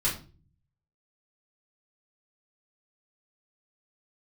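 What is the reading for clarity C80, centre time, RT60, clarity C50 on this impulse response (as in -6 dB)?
14.0 dB, 25 ms, 0.40 s, 8.5 dB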